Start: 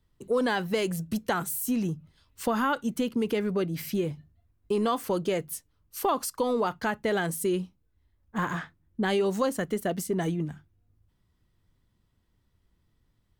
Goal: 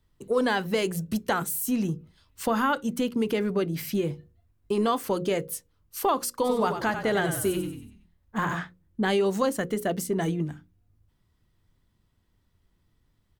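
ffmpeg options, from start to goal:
-filter_complex "[0:a]bandreject=f=60:t=h:w=6,bandreject=f=120:t=h:w=6,bandreject=f=180:t=h:w=6,bandreject=f=240:t=h:w=6,bandreject=f=300:t=h:w=6,bandreject=f=360:t=h:w=6,bandreject=f=420:t=h:w=6,bandreject=f=480:t=h:w=6,bandreject=f=540:t=h:w=6,asplit=3[a][b][c];[a]afade=t=out:st=6.44:d=0.02[d];[b]asplit=6[e][f][g][h][i][j];[f]adelay=94,afreqshift=-38,volume=-8dB[k];[g]adelay=188,afreqshift=-76,volume=-14.7dB[l];[h]adelay=282,afreqshift=-114,volume=-21.5dB[m];[i]adelay=376,afreqshift=-152,volume=-28.2dB[n];[j]adelay=470,afreqshift=-190,volume=-35dB[o];[e][k][l][m][n][o]amix=inputs=6:normalize=0,afade=t=in:st=6.44:d=0.02,afade=t=out:st=8.53:d=0.02[p];[c]afade=t=in:st=8.53:d=0.02[q];[d][p][q]amix=inputs=3:normalize=0,volume=2dB"

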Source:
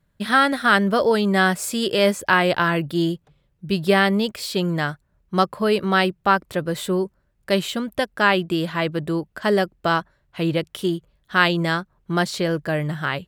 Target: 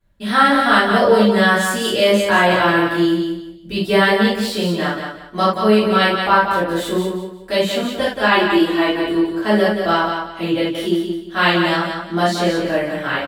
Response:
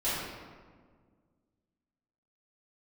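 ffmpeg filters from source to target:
-filter_complex "[0:a]asettb=1/sr,asplit=3[a][b][c];[a]atrim=end=8.314[d];[b]atrim=start=8.31:end=9.13,asetpts=PTS-STARTPTS,afade=t=in:d=0.004:c=qsin,afade=t=out:st=0.816:d=0.004:c=qsin,aecho=1:1:2.7:0.57,atrim=end_sample=36162[e];[c]atrim=start=9.126[f];[d][e]acrossfade=d=0.004:c1=hsin:c2=qsin[g];[g][f]acrossfade=d=0.004:c1=qsin:c2=hsin,aecho=1:1:177|354|531|708:0.501|0.14|0.0393|0.011[h];[1:a]atrim=start_sample=2205,atrim=end_sample=4410[i];[h][i]afir=irnorm=-1:irlink=0,volume=-3.5dB"

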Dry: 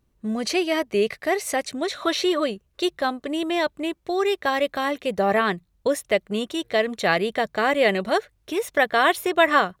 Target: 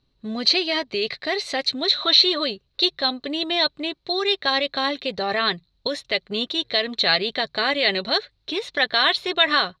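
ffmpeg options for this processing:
-filter_complex "[0:a]aecho=1:1:7.4:0.31,acrossover=split=1200[a][b];[a]alimiter=limit=-18.5dB:level=0:latency=1[c];[c][b]amix=inputs=2:normalize=0,lowpass=f=4.1k:t=q:w=8.5,volume=-1.5dB"

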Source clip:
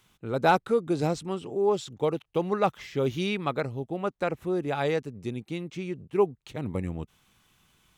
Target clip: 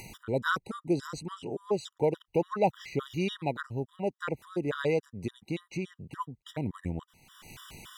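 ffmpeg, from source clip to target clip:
-af "acompressor=mode=upward:threshold=-28dB:ratio=2.5,afftfilt=real='re*gt(sin(2*PI*3.5*pts/sr)*(1-2*mod(floor(b*sr/1024/970),2)),0)':imag='im*gt(sin(2*PI*3.5*pts/sr)*(1-2*mod(floor(b*sr/1024/970),2)),0)':win_size=1024:overlap=0.75"

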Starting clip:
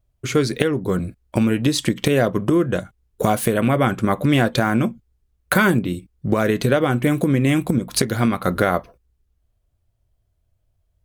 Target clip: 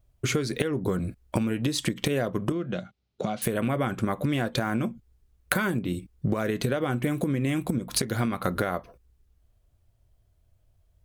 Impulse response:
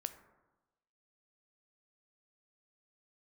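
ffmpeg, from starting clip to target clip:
-filter_complex "[0:a]acompressor=threshold=-26dB:ratio=10,asettb=1/sr,asplit=3[a][b][c];[a]atrim=end=2.524[d];[b]atrim=start=2.52:end=3.42,asetpts=PTS-STARTPTS,afade=t=in:d=0.004:c=qsin,afade=t=out:st=0.896:d=0.004:c=qsin,highpass=160,equalizer=f=200:t=q:w=4:g=4,equalizer=f=290:t=q:w=4:g=-7,equalizer=f=450:t=q:w=4:g=-8,equalizer=f=1k:t=q:w=4:g=-8,equalizer=f=1.7k:t=q:w=4:g=-7,equalizer=f=4.1k:t=q:w=4:g=3,lowpass=f=5.3k:w=0.5412,lowpass=f=5.3k:w=1.3066[e];[c]atrim=start=3.416[f];[d][e]acrossfade=d=0.004:c1=hsin:c2=qsin[g];[g][f]acrossfade=d=0.004:c1=qsin:c2=hsin,volume=3dB"

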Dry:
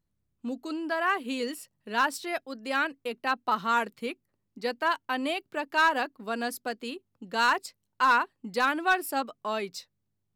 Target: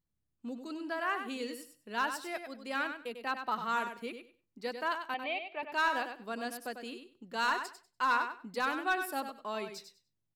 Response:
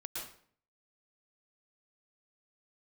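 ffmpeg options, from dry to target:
-filter_complex "[0:a]asettb=1/sr,asplit=3[a][b][c];[a]atrim=end=5.144[d];[b]atrim=start=5.14:end=5.63,asetpts=PTS-STARTPTS,afade=t=in:d=0.004:c=qsin,afade=t=out:st=0.486:d=0.004:c=qsin,highpass=460,equalizer=f=780:t=q:w=4:g=6,equalizer=f=1.5k:t=q:w=4:g=-10,equalizer=f=2.3k:t=q:w=4:g=9,lowpass=f=3.8k:w=0.5412,lowpass=f=3.8k:w=1.3066[e];[c]atrim=start=5.626[f];[d][e]acrossfade=d=0.004:c1=hsin:c2=qsin[g];[g][f]acrossfade=d=0.004:c1=qsin:c2=hsin,aecho=1:1:97|194|291:0.398|0.0717|0.0129,asplit=2[h][i];[1:a]atrim=start_sample=2205,afade=t=out:st=0.2:d=0.01,atrim=end_sample=9261[j];[i][j]afir=irnorm=-1:irlink=0,volume=-21.5dB[k];[h][k]amix=inputs=2:normalize=0,volume=-7.5dB"

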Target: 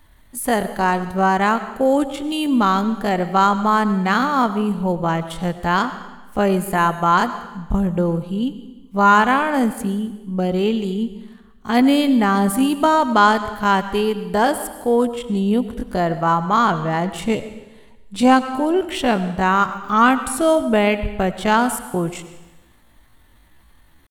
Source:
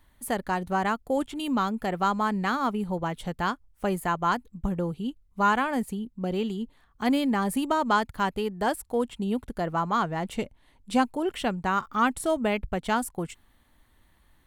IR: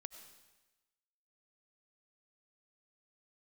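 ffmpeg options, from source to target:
-filter_complex "[0:a]atempo=0.6,asplit=2[a][b];[1:a]atrim=start_sample=2205[c];[b][c]afir=irnorm=-1:irlink=0,volume=12dB[d];[a][d]amix=inputs=2:normalize=0,volume=-1dB"

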